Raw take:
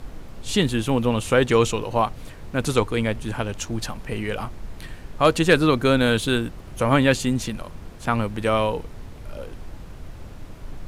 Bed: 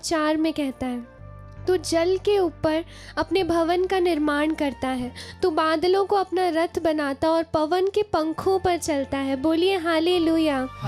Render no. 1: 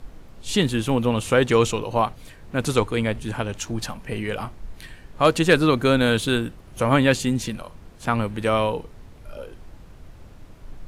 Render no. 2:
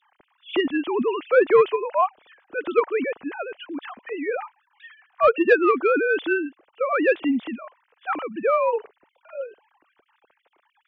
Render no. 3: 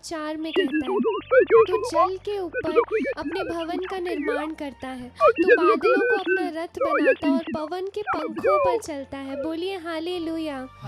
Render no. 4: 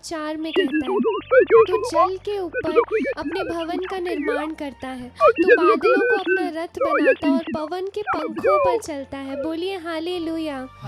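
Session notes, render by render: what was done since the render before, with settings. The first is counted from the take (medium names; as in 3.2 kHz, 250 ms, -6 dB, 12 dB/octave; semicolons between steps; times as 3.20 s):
noise print and reduce 6 dB
formants replaced by sine waves; saturation -5.5 dBFS, distortion -22 dB
add bed -8 dB
trim +2.5 dB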